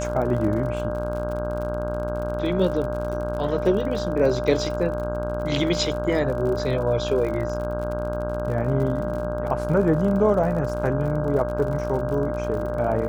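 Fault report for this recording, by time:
buzz 60 Hz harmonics 27 -30 dBFS
crackle 53/s -31 dBFS
tone 600 Hz -28 dBFS

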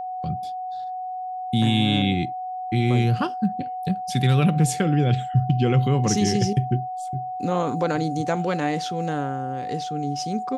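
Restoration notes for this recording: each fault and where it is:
tone 740 Hz -28 dBFS

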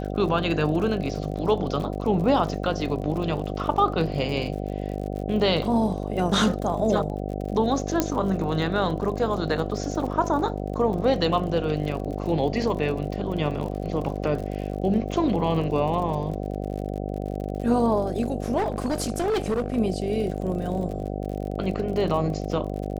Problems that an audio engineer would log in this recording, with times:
buzz 50 Hz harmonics 15 -30 dBFS
crackle 50/s -33 dBFS
8 pop -6 dBFS
18.57–19.76 clipped -20.5 dBFS

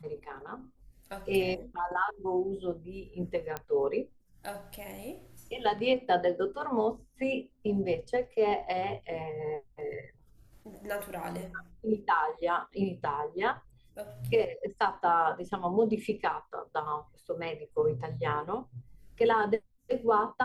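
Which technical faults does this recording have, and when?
3.57 pop -19 dBFS

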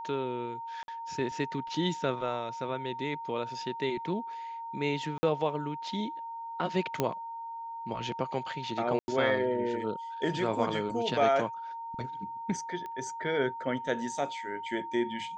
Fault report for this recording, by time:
tone 920 Hz -37 dBFS
0.83–0.88 gap 51 ms
5.18–5.23 gap 50 ms
7 pop -13 dBFS
8.99–9.08 gap 90 ms
12.86 pop -28 dBFS

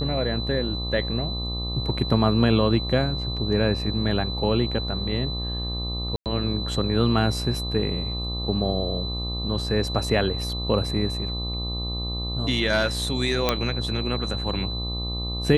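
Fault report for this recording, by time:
buzz 60 Hz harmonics 21 -30 dBFS
tone 4000 Hz -31 dBFS
6.16–6.26 gap 98 ms
13.49 pop -5 dBFS

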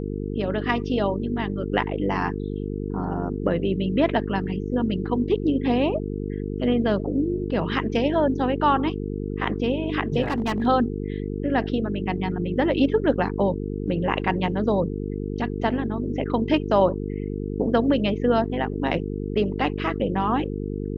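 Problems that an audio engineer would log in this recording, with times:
buzz 50 Hz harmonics 9 -29 dBFS
10.22–10.67 clipped -19.5 dBFS

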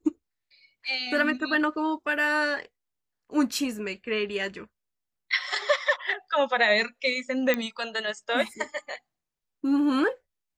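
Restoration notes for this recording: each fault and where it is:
7.54 pop -11 dBFS

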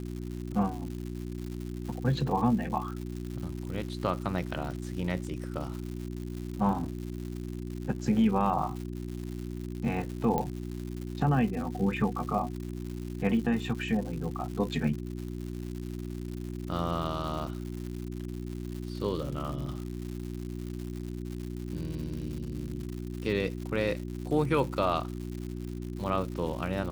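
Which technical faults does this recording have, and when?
crackle 210/s -37 dBFS
hum 60 Hz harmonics 6 -37 dBFS
10.38 pop -17 dBFS

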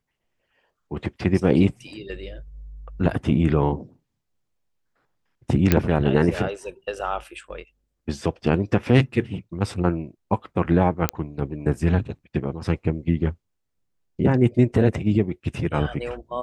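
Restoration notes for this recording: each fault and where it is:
5.72 pop -4 dBFS
11.09 pop -5 dBFS

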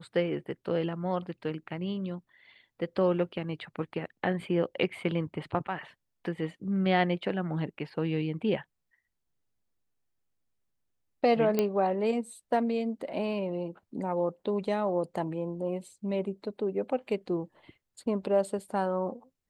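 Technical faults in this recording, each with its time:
11.59 pop -13 dBFS

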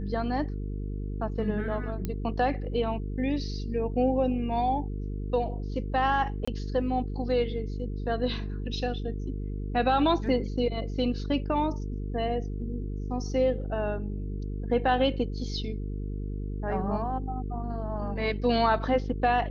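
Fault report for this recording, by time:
buzz 50 Hz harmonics 9 -33 dBFS
2.05 pop -18 dBFS
6.45–6.47 gap 25 ms

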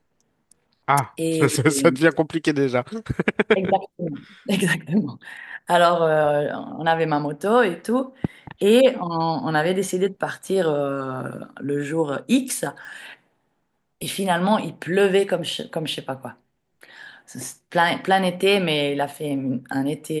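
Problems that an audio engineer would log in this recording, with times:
12.85 pop -27 dBFS

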